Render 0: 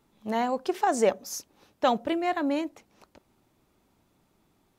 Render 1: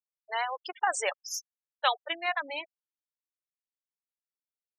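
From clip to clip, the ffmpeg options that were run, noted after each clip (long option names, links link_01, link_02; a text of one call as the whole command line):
ffmpeg -i in.wav -af "highpass=1400,afftfilt=real='re*gte(hypot(re,im),0.02)':imag='im*gte(hypot(re,im),0.02)':win_size=1024:overlap=0.75,equalizer=frequency=6500:width_type=o:width=0.41:gain=-6,volume=6.5dB" out.wav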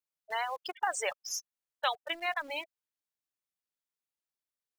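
ffmpeg -i in.wav -filter_complex "[0:a]asplit=2[link_01][link_02];[link_02]acrusher=bits=6:mix=0:aa=0.000001,volume=-10.5dB[link_03];[link_01][link_03]amix=inputs=2:normalize=0,acompressor=threshold=-38dB:ratio=1.5" out.wav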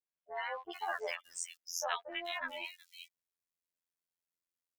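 ffmpeg -i in.wav -filter_complex "[0:a]afftfilt=real='hypot(re,im)*cos(PI*b)':imag='0':win_size=2048:overlap=0.75,acrossover=split=980|3500[link_01][link_02][link_03];[link_02]adelay=60[link_04];[link_03]adelay=430[link_05];[link_01][link_04][link_05]amix=inputs=3:normalize=0,volume=1dB" out.wav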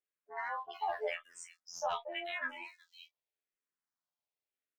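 ffmpeg -i in.wav -filter_complex "[0:a]asplit=2[link_01][link_02];[link_02]highpass=frequency=720:poles=1,volume=10dB,asoftclip=type=tanh:threshold=-18dB[link_03];[link_01][link_03]amix=inputs=2:normalize=0,lowpass=frequency=1200:poles=1,volume=-6dB,asplit=2[link_04][link_05];[link_05]adelay=28,volume=-10dB[link_06];[link_04][link_06]amix=inputs=2:normalize=0,asplit=2[link_07][link_08];[link_08]afreqshift=-0.87[link_09];[link_07][link_09]amix=inputs=2:normalize=1,volume=2dB" out.wav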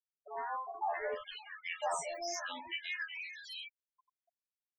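ffmpeg -i in.wav -filter_complex "[0:a]aeval=exprs='val(0)+0.5*0.0119*sgn(val(0))':channel_layout=same,acrossover=split=460|1500[link_01][link_02][link_03];[link_01]adelay=80[link_04];[link_03]adelay=570[link_05];[link_04][link_02][link_05]amix=inputs=3:normalize=0,afftfilt=real='re*gte(hypot(re,im),0.01)':imag='im*gte(hypot(re,im),0.01)':win_size=1024:overlap=0.75" out.wav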